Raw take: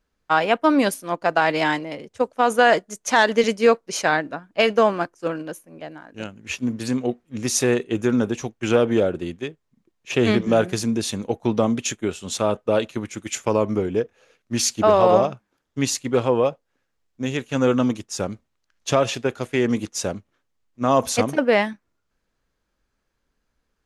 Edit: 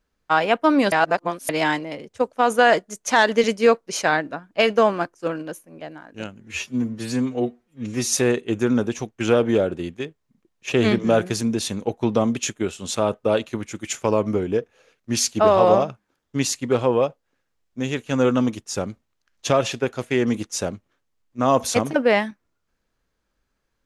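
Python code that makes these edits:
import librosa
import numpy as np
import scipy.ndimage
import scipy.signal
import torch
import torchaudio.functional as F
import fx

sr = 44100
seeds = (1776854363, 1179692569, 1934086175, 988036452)

y = fx.edit(x, sr, fx.reverse_span(start_s=0.92, length_s=0.57),
    fx.stretch_span(start_s=6.4, length_s=1.15, factor=1.5), tone=tone)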